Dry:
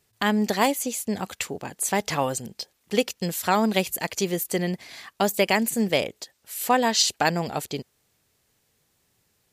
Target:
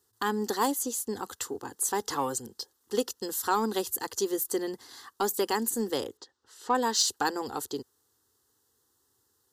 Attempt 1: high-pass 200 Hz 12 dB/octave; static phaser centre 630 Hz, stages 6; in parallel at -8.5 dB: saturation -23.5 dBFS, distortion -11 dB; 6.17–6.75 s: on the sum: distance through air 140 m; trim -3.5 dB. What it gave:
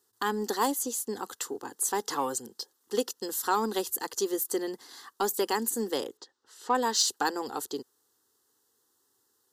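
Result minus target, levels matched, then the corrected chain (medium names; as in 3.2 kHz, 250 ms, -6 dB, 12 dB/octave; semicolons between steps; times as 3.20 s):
125 Hz band -3.5 dB
high-pass 81 Hz 12 dB/octave; static phaser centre 630 Hz, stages 6; in parallel at -8.5 dB: saturation -23.5 dBFS, distortion -11 dB; 6.17–6.75 s: on the sum: distance through air 140 m; trim -3.5 dB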